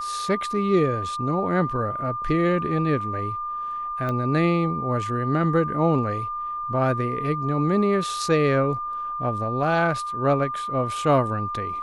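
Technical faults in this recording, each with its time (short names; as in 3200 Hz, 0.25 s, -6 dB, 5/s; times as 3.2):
tone 1200 Hz -27 dBFS
4.09 pop -17 dBFS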